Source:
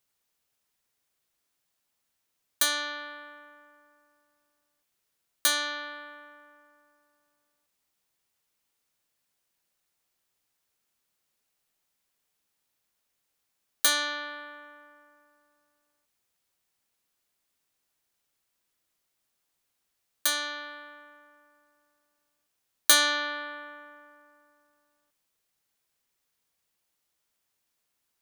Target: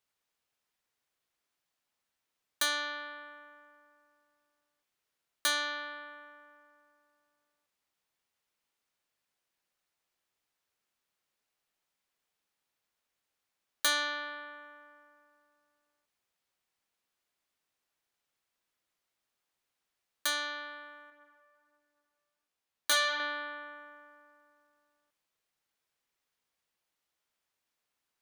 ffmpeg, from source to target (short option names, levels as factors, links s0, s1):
-filter_complex "[0:a]lowshelf=f=370:g=-5.5,asettb=1/sr,asplit=3[s0][s1][s2];[s0]atrim=end=21.104[s3];[s1]atrim=start=21.1:end=23.2,asetpts=PTS-STARTPTS,afade=t=in:d=0.004:c=qsin,afade=t=out:st=2.096:d=0.004:c=qsin,flanger=delay=16.5:depth=2.3:speed=1.3[s4];[s2]atrim=start=23.196[s5];[s3][s4]acrossfade=d=0.004:c1=hsin:c2=qsin[s6];[s6][s5]acrossfade=d=0.004:c1=qsin:c2=hsin,highshelf=f=5400:g=-9.5,volume=0.891"